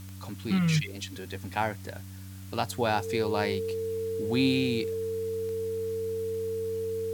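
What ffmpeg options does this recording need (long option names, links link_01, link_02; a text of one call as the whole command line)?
ffmpeg -i in.wav -af "adeclick=threshold=4,bandreject=frequency=95.3:width_type=h:width=4,bandreject=frequency=190.6:width_type=h:width=4,bandreject=frequency=285.9:width_type=h:width=4,bandreject=frequency=450:width=30,afwtdn=0.0022" out.wav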